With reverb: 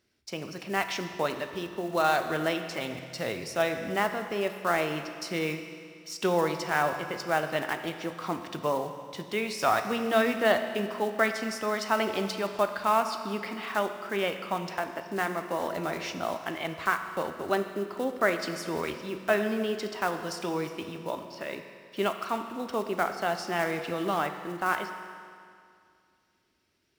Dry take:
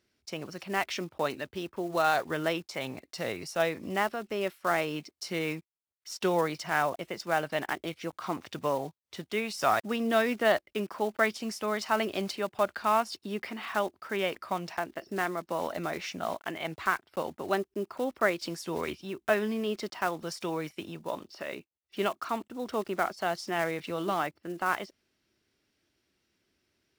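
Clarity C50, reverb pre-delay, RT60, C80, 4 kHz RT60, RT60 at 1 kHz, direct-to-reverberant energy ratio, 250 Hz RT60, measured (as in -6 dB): 8.0 dB, 14 ms, 2.3 s, 9.0 dB, 2.2 s, 2.3 s, 6.5 dB, 2.3 s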